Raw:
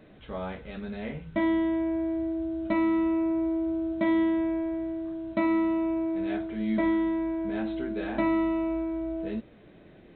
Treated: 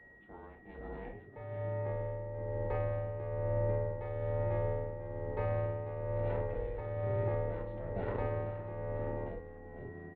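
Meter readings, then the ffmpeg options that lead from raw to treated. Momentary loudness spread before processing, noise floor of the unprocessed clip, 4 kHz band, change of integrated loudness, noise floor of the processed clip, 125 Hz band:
11 LU, −53 dBFS, can't be measured, −8.5 dB, −54 dBFS, +9.0 dB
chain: -filter_complex "[0:a]alimiter=limit=-24dB:level=0:latency=1,dynaudnorm=framelen=410:gausssize=9:maxgain=5.5dB,asplit=7[link_01][link_02][link_03][link_04][link_05][link_06][link_07];[link_02]adelay=492,afreqshift=-78,volume=-6dB[link_08];[link_03]adelay=984,afreqshift=-156,volume=-11.8dB[link_09];[link_04]adelay=1476,afreqshift=-234,volume=-17.7dB[link_10];[link_05]adelay=1968,afreqshift=-312,volume=-23.5dB[link_11];[link_06]adelay=2460,afreqshift=-390,volume=-29.4dB[link_12];[link_07]adelay=2952,afreqshift=-468,volume=-35.2dB[link_13];[link_01][link_08][link_09][link_10][link_11][link_12][link_13]amix=inputs=7:normalize=0,aeval=exprs='val(0)*sin(2*PI*240*n/s)':channel_layout=same,afreqshift=20,adynamicsmooth=sensitivity=0.5:basefreq=1600,aeval=exprs='val(0)+0.00316*sin(2*PI*1900*n/s)':channel_layout=same,tremolo=f=1.1:d=0.58,aresample=11025,aresample=44100,volume=-5.5dB"

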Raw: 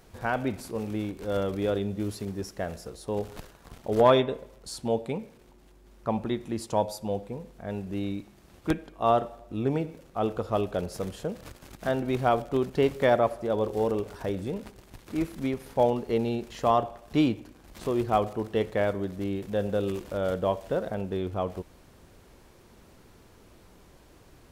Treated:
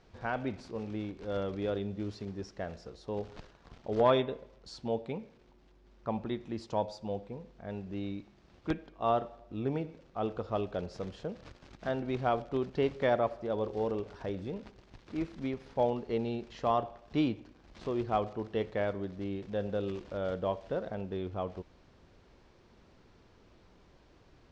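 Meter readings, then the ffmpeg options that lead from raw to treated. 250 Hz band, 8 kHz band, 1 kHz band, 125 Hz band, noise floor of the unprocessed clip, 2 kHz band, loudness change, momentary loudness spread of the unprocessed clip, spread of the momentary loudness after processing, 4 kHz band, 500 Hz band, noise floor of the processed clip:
−6.0 dB, below −10 dB, −6.0 dB, −6.0 dB, −56 dBFS, −6.0 dB, −6.0 dB, 12 LU, 12 LU, −6.0 dB, −6.0 dB, −62 dBFS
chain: -af "lowpass=frequency=5600:width=0.5412,lowpass=frequency=5600:width=1.3066,volume=-6dB"

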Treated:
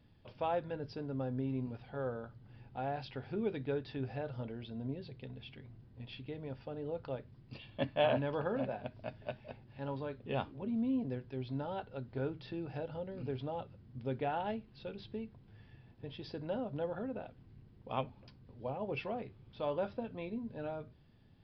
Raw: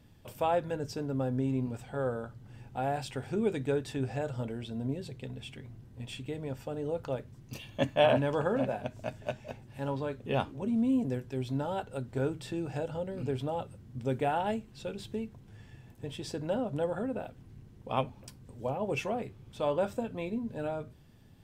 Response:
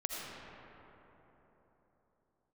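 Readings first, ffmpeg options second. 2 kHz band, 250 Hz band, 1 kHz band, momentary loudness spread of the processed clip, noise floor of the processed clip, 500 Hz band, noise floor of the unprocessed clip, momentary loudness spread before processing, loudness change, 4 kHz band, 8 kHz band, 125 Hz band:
−6.0 dB, −6.0 dB, −6.0 dB, 15 LU, −61 dBFS, −6.0 dB, −55 dBFS, 15 LU, −6.0 dB, −6.0 dB, below −25 dB, −6.0 dB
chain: -af "aresample=11025,aresample=44100,volume=-6dB"

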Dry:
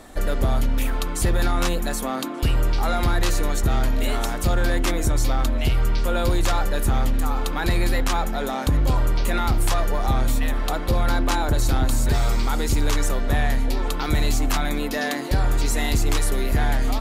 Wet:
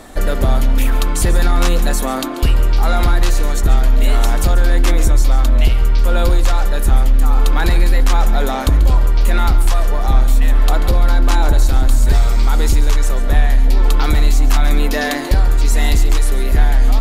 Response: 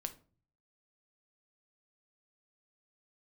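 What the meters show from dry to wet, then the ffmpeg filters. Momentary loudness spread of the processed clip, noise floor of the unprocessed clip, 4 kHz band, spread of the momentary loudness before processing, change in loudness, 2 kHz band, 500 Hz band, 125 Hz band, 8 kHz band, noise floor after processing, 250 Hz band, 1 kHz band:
3 LU, −27 dBFS, +4.0 dB, 3 LU, +7.5 dB, +4.0 dB, +4.0 dB, +7.0 dB, +3.5 dB, −18 dBFS, +3.0 dB, +4.0 dB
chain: -filter_complex "[0:a]asubboost=boost=3.5:cutoff=51,acompressor=threshold=-14dB:ratio=6,asplit=2[link_01][link_02];[1:a]atrim=start_sample=2205,adelay=138[link_03];[link_02][link_03]afir=irnorm=-1:irlink=0,volume=-11dB[link_04];[link_01][link_04]amix=inputs=2:normalize=0,volume=6.5dB"

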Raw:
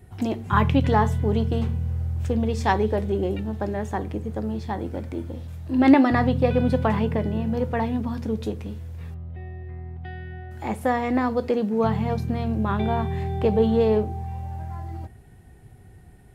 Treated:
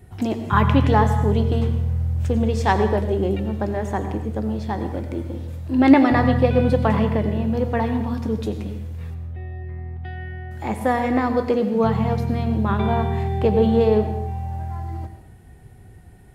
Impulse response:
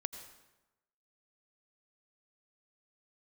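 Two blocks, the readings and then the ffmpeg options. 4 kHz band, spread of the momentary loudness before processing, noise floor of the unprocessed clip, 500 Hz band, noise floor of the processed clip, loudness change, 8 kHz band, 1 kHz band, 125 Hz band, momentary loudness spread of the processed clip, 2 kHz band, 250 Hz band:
+3.0 dB, 17 LU, −48 dBFS, +3.0 dB, −45 dBFS, +3.0 dB, can't be measured, +3.0 dB, +4.0 dB, 16 LU, +3.0 dB, +2.5 dB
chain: -filter_complex "[1:a]atrim=start_sample=2205,afade=type=out:start_time=0.34:duration=0.01,atrim=end_sample=15435[link_01];[0:a][link_01]afir=irnorm=-1:irlink=0,volume=3.5dB"

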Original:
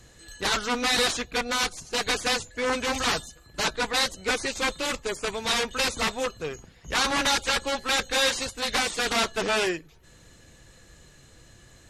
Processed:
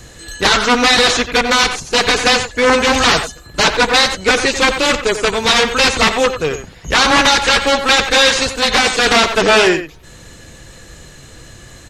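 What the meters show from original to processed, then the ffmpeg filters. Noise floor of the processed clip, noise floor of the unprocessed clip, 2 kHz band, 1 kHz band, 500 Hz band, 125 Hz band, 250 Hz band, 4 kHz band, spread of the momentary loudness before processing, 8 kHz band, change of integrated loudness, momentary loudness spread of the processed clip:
−40 dBFS, −54 dBFS, +14.0 dB, +14.0 dB, +14.5 dB, +14.0 dB, +14.0 dB, +13.0 dB, 7 LU, +10.5 dB, +13.5 dB, 6 LU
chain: -filter_complex "[0:a]asplit=2[link_01][link_02];[link_02]adelay=90,highpass=300,lowpass=3400,asoftclip=type=hard:threshold=-20.5dB,volume=-9dB[link_03];[link_01][link_03]amix=inputs=2:normalize=0,acrossover=split=7300[link_04][link_05];[link_05]acompressor=threshold=-49dB:ratio=4:attack=1:release=60[link_06];[link_04][link_06]amix=inputs=2:normalize=0,alimiter=level_in=15.5dB:limit=-1dB:release=50:level=0:latency=1,volume=-1dB"

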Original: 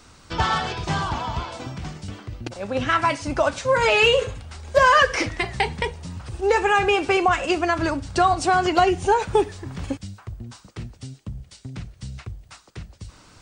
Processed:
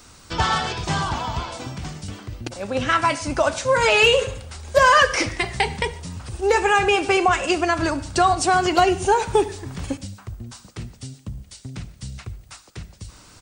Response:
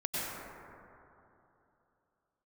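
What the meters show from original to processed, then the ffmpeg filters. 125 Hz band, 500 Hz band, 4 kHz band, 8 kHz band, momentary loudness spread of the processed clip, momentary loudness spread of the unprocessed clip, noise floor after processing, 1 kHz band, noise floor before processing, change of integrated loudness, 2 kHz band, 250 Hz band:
+0.5 dB, +1.0 dB, +2.5 dB, +6.0 dB, 21 LU, 21 LU, −49 dBFS, +1.0 dB, −52 dBFS, +1.0 dB, +1.5 dB, +1.0 dB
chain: -filter_complex "[0:a]highshelf=frequency=7000:gain=10.5,aecho=1:1:73|146|219|292:0.0794|0.0461|0.0267|0.0155,asplit=2[link_01][link_02];[1:a]atrim=start_sample=2205,afade=type=out:start_time=0.19:duration=0.01,atrim=end_sample=8820[link_03];[link_02][link_03]afir=irnorm=-1:irlink=0,volume=-20dB[link_04];[link_01][link_04]amix=inputs=2:normalize=0"

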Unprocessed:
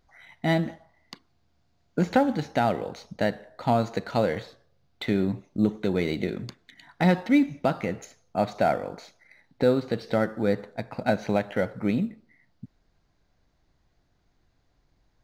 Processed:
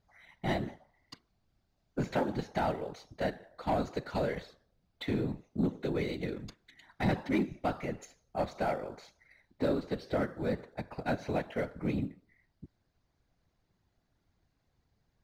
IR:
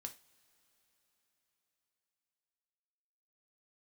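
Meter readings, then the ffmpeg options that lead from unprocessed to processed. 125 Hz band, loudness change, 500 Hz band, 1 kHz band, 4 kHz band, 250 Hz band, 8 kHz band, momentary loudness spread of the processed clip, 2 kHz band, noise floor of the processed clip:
−7.0 dB, −8.5 dB, −8.0 dB, −8.0 dB, −7.5 dB, −8.5 dB, can't be measured, 10 LU, −8.0 dB, −77 dBFS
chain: -af "afftfilt=real='hypot(re,im)*cos(2*PI*random(0))':imag='hypot(re,im)*sin(2*PI*random(1))':win_size=512:overlap=0.75,aeval=exprs='0.2*(cos(1*acos(clip(val(0)/0.2,-1,1)))-cos(1*PI/2))+0.0178*(cos(5*acos(clip(val(0)/0.2,-1,1)))-cos(5*PI/2))':channel_layout=same,volume=-4dB"

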